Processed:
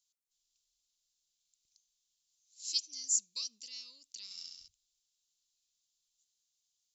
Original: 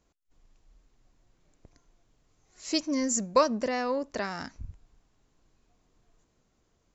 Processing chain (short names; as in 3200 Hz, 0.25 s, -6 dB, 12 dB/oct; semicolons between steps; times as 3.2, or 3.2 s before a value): inverse Chebyshev high-pass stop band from 1800 Hz, stop band 40 dB; 4.24–4.68 flutter echo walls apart 11.5 m, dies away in 1.1 s